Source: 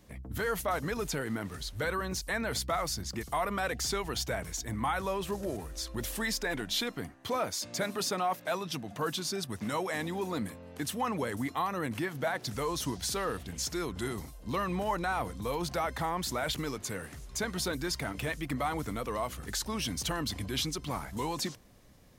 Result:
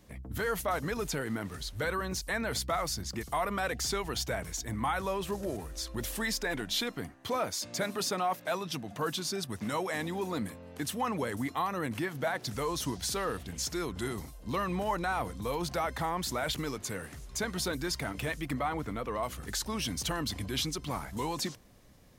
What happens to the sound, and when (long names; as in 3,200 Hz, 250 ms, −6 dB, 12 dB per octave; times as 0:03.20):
0:18.59–0:19.23: bass and treble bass −1 dB, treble −10 dB